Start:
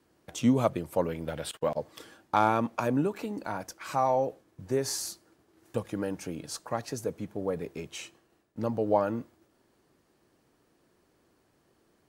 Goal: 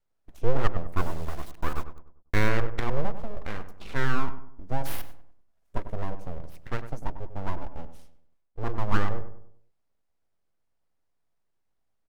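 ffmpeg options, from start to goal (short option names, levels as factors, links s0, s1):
-filter_complex "[0:a]afwtdn=0.00891,aeval=exprs='abs(val(0))':c=same,asplit=3[s0][s1][s2];[s0]afade=t=out:st=0.96:d=0.02[s3];[s1]acrusher=bits=5:dc=4:mix=0:aa=0.000001,afade=t=in:st=0.96:d=0.02,afade=t=out:st=2.48:d=0.02[s4];[s2]afade=t=in:st=2.48:d=0.02[s5];[s3][s4][s5]amix=inputs=3:normalize=0,lowshelf=f=63:g=10,asplit=2[s6][s7];[s7]adelay=98,lowpass=f=1400:p=1,volume=0.316,asplit=2[s8][s9];[s9]adelay=98,lowpass=f=1400:p=1,volume=0.43,asplit=2[s10][s11];[s11]adelay=98,lowpass=f=1400:p=1,volume=0.43,asplit=2[s12][s13];[s13]adelay=98,lowpass=f=1400:p=1,volume=0.43,asplit=2[s14][s15];[s15]adelay=98,lowpass=f=1400:p=1,volume=0.43[s16];[s8][s10][s12][s14][s16]amix=inputs=5:normalize=0[s17];[s6][s17]amix=inputs=2:normalize=0"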